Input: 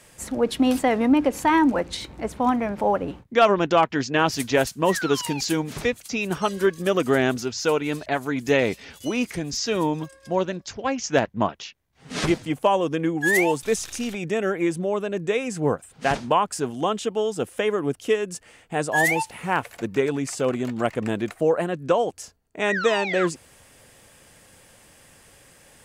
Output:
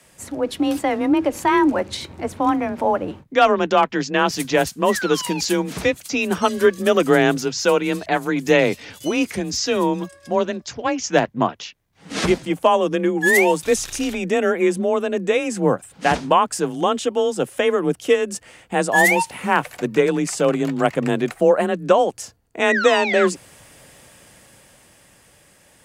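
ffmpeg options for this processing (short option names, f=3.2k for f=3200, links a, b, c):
-af "afreqshift=26,dynaudnorm=f=100:g=31:m=11.5dB,volume=-1dB"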